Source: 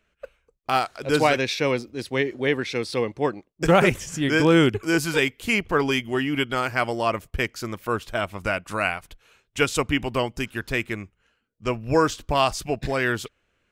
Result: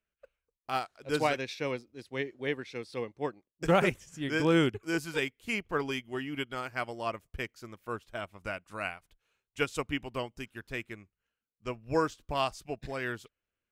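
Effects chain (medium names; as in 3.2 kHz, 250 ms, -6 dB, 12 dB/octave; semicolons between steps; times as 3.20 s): upward expansion 1.5:1, over -39 dBFS; trim -7 dB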